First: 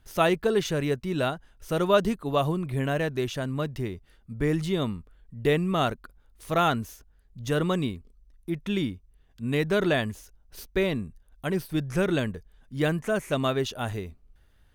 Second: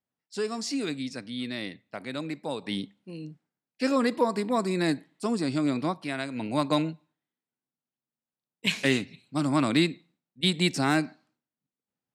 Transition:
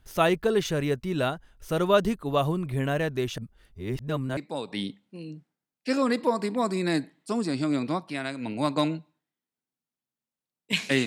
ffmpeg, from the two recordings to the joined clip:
ffmpeg -i cue0.wav -i cue1.wav -filter_complex "[0:a]apad=whole_dur=11.06,atrim=end=11.06,asplit=2[link_01][link_02];[link_01]atrim=end=3.382[link_03];[link_02]atrim=start=3.378:end=4.372,asetpts=PTS-STARTPTS,areverse[link_04];[1:a]atrim=start=2.308:end=9[link_05];[link_03][link_04]acrossfade=duration=0.004:curve1=hsin:curve2=hsin[link_06];[link_06][link_05]acrossfade=duration=0.004:curve1=hsin:curve2=hsin" out.wav

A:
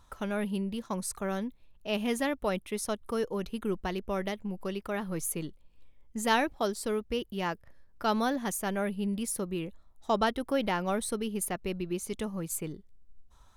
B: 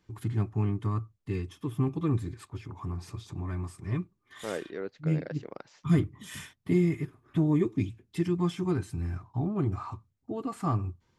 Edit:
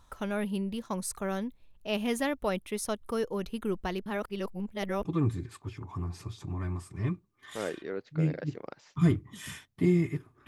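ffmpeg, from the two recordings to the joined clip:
ffmpeg -i cue0.wav -i cue1.wav -filter_complex "[0:a]apad=whole_dur=10.47,atrim=end=10.47,asplit=2[link_01][link_02];[link_01]atrim=end=4.062[link_03];[link_02]atrim=start=4.058:end=5.052,asetpts=PTS-STARTPTS,areverse[link_04];[1:a]atrim=start=1.928:end=7.35[link_05];[link_03][link_04]acrossfade=duration=0.004:curve1=hsin:curve2=hsin[link_06];[link_06][link_05]acrossfade=duration=0.004:curve1=hsin:curve2=hsin" out.wav

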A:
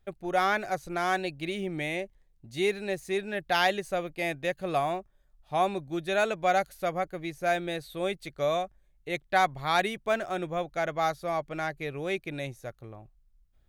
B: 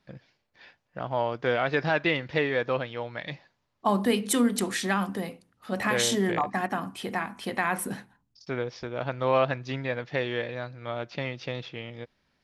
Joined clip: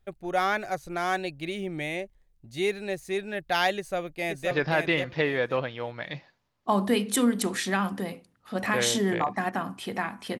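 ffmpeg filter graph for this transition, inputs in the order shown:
ffmpeg -i cue0.wav -i cue1.wav -filter_complex "[0:a]apad=whole_dur=10.39,atrim=end=10.39,atrim=end=4.512[link_01];[1:a]atrim=start=1.678:end=7.56[link_02];[link_01][link_02]acrossfade=duration=0.004:curve1=hsin:curve2=hsin,asplit=2[link_03][link_04];[link_04]afade=type=in:start_time=3.76:duration=0.01,afade=type=out:start_time=4.51:duration=0.01,aecho=0:1:530|1060|1590:0.595662|0.148916|0.0372289[link_05];[link_03][link_05]amix=inputs=2:normalize=0" out.wav

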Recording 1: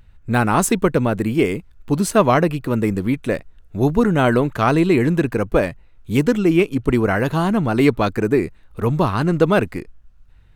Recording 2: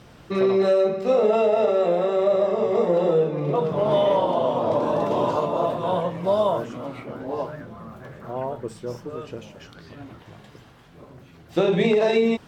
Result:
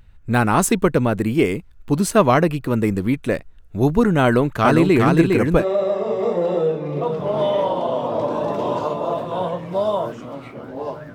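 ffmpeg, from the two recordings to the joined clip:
ffmpeg -i cue0.wav -i cue1.wav -filter_complex "[0:a]asettb=1/sr,asplit=3[link_01][link_02][link_03];[link_01]atrim=end=4.244[link_04];[link_02]atrim=start=4.24:end=5.65,asetpts=PTS-STARTPTS,afade=type=in:duration=0.004:curve=qsin,afade=type=out:start_time=1.406:duration=0.004:curve=qsin,aecho=1:1:406:0.708,atrim=end_sample=62181[link_05];[link_03]atrim=start=5.646[link_06];[link_04][link_05]acrossfade=duration=0.004:curve1=hsin:curve2=qsin[link_07];[link_07][link_06]acrossfade=duration=0.004:curve1=qsin:curve2=hsin,apad=whole_dur=11.14,atrim=end=11.14,atrim=end=5.65,asetpts=PTS-STARTPTS[link_08];[1:a]atrim=start=2.09:end=7.66,asetpts=PTS-STARTPTS[link_09];[link_08][link_09]acrossfade=duration=0.08:curve1=tri:curve2=tri" out.wav

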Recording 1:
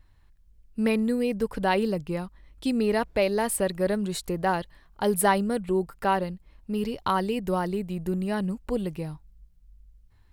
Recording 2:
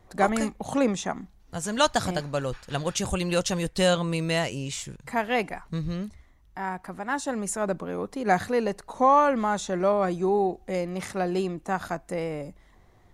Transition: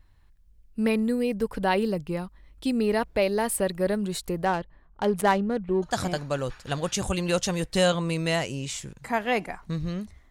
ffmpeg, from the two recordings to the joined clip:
ffmpeg -i cue0.wav -i cue1.wav -filter_complex "[0:a]asettb=1/sr,asplit=3[link_01][link_02][link_03];[link_01]atrim=end=4.454[link_04];[link_02]atrim=start=4.45:end=5.98,asetpts=PTS-STARTPTS,afade=type=in:duration=0.004:curve=qsin,afade=type=out:start_time=1.526:duration=0.004:curve=qsin,adynamicsmooth=sensitivity=3.5:basefreq=1600[link_05];[link_03]atrim=start=5.976[link_06];[link_04][link_05]acrossfade=duration=0.004:curve1=hsin:curve2=qsin[link_07];[link_07][link_06]acrossfade=duration=0.004:curve1=qsin:curve2=hsin,apad=whole_dur=10.3,atrim=end=10.3,atrim=end=5.98,asetpts=PTS-STARTPTS[link_08];[1:a]atrim=start=1.85:end=6.33,asetpts=PTS-STARTPTS[link_09];[link_08][link_09]acrossfade=duration=0.16:curve1=tri:curve2=tri" out.wav

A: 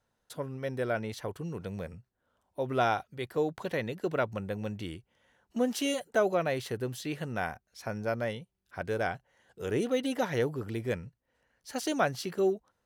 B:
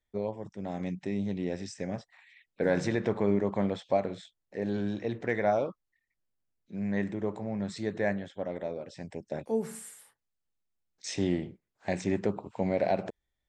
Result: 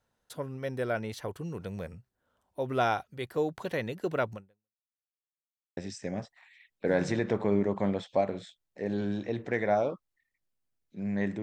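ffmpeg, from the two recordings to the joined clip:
ffmpeg -i cue0.wav -i cue1.wav -filter_complex "[0:a]apad=whole_dur=11.42,atrim=end=11.42,asplit=2[link_01][link_02];[link_01]atrim=end=4.87,asetpts=PTS-STARTPTS,afade=type=out:start_time=4.33:duration=0.54:curve=exp[link_03];[link_02]atrim=start=4.87:end=5.77,asetpts=PTS-STARTPTS,volume=0[link_04];[1:a]atrim=start=1.53:end=7.18,asetpts=PTS-STARTPTS,afade=type=in:duration=0.004:curve=hsin[link_05];[link_03][link_04][link_05]concat=n=3:v=0:a=1" out.wav

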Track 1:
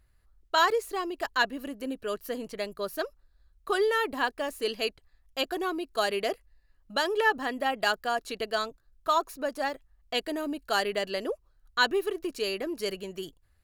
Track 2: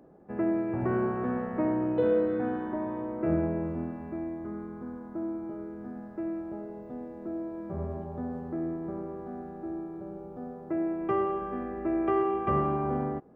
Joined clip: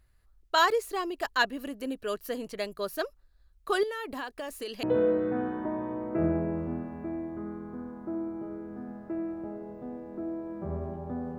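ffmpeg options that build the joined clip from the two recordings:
ffmpeg -i cue0.wav -i cue1.wav -filter_complex "[0:a]asettb=1/sr,asplit=3[link_01][link_02][link_03];[link_01]atrim=end=3.834[link_04];[link_02]atrim=start=3.83:end=4.83,asetpts=PTS-STARTPTS,afade=type=in:duration=0.004:curve=qsin,afade=type=out:start_time=0.996:duration=0.004:curve=qsin,acompressor=threshold=-32dB:ratio=10:attack=3.2:release=140:knee=1:detection=peak[link_05];[link_03]atrim=start=4.826[link_06];[link_04][link_05]acrossfade=duration=0.004:curve1=hsin:curve2=qsin[link_07];[link_07][link_06]acrossfade=duration=0.004:curve1=qsin:curve2=hsin,apad=whole_dur=11.38,atrim=end=11.38,atrim=end=4.832[link_08];[1:a]atrim=start=1.908:end=8.46[link_09];[link_08][link_09]acrossfade=duration=0.004:curve1=hsin:curve2=hsin" out.wav

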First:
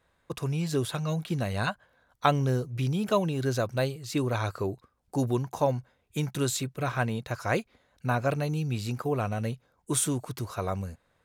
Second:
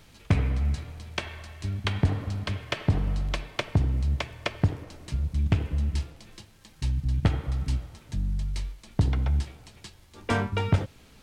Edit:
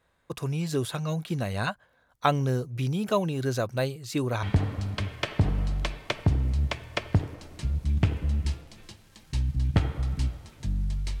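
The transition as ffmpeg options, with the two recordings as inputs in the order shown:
ffmpeg -i cue0.wav -i cue1.wav -filter_complex "[0:a]apad=whole_dur=11.2,atrim=end=11.2,atrim=end=4.432[link_01];[1:a]atrim=start=1.918:end=8.69[link_02];[link_01][link_02]acrossfade=duration=0.004:curve1=hsin:curve2=hsin" out.wav

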